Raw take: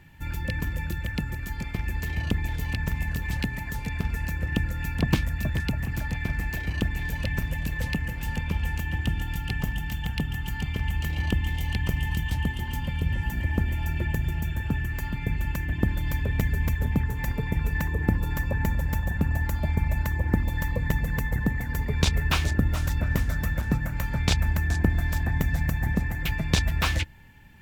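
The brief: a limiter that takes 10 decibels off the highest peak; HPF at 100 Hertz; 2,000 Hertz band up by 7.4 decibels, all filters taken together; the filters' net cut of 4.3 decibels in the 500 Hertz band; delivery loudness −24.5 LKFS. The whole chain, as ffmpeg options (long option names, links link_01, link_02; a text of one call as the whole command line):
ffmpeg -i in.wav -af "highpass=100,equalizer=frequency=500:width_type=o:gain=-6,equalizer=frequency=2000:width_type=o:gain=9,volume=4dB,alimiter=limit=-13dB:level=0:latency=1" out.wav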